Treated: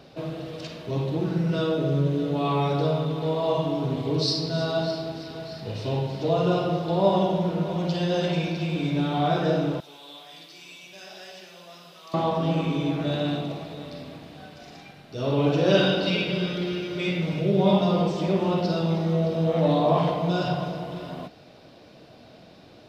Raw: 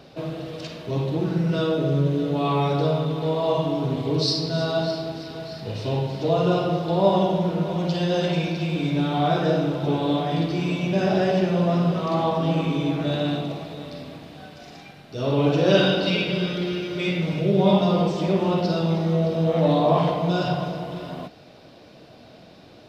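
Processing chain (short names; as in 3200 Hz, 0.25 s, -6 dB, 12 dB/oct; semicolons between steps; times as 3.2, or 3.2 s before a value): 9.8–12.14 differentiator; gain -2 dB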